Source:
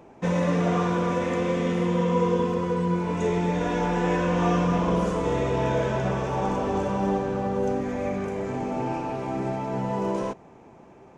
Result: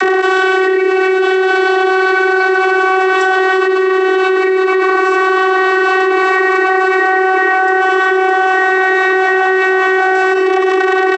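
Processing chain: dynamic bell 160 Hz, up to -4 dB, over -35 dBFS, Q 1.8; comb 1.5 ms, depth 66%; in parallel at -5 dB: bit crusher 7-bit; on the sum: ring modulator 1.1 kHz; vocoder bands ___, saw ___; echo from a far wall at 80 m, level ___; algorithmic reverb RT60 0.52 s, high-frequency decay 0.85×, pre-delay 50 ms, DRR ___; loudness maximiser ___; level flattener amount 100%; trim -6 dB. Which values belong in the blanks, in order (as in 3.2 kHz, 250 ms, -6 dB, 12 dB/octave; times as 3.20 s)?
32, 377 Hz, -29 dB, 19.5 dB, +13.5 dB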